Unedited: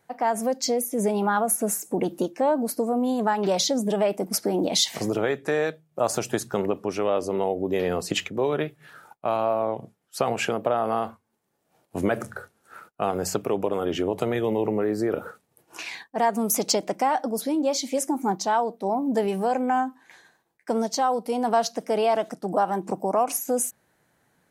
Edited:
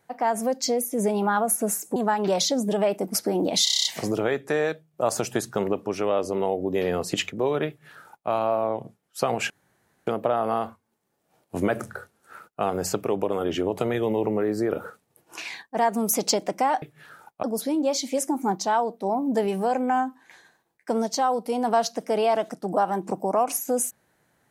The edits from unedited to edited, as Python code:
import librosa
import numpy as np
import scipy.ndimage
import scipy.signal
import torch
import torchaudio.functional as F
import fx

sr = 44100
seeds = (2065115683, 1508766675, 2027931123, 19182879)

y = fx.edit(x, sr, fx.cut(start_s=1.96, length_s=1.19),
    fx.stutter(start_s=4.83, slice_s=0.03, count=8),
    fx.duplicate(start_s=8.66, length_s=0.61, to_s=17.23),
    fx.insert_room_tone(at_s=10.48, length_s=0.57), tone=tone)